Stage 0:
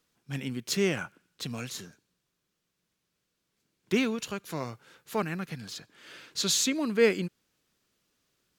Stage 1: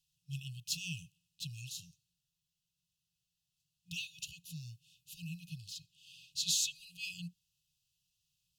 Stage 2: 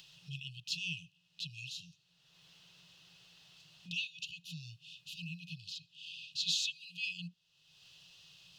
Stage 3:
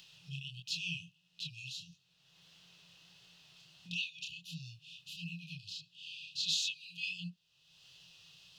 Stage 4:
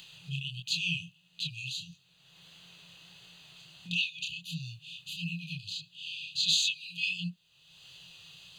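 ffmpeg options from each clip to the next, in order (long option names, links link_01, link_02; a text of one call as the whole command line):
ffmpeg -i in.wav -af "afftfilt=real='re*(1-between(b*sr/4096,180,2500))':imag='im*(1-between(b*sr/4096,180,2500))':win_size=4096:overlap=0.75,volume=-5dB" out.wav
ffmpeg -i in.wav -filter_complex "[0:a]acrossover=split=200 4500:gain=0.112 1 0.0708[link_01][link_02][link_03];[link_01][link_02][link_03]amix=inputs=3:normalize=0,acompressor=mode=upward:threshold=-45dB:ratio=2.5,volume=5.5dB" out.wav
ffmpeg -i in.wav -af "flanger=delay=22.5:depth=7.9:speed=1.5,volume=3dB" out.wav
ffmpeg -i in.wav -af "asuperstop=centerf=5400:order=4:qfactor=4.6,volume=7.5dB" out.wav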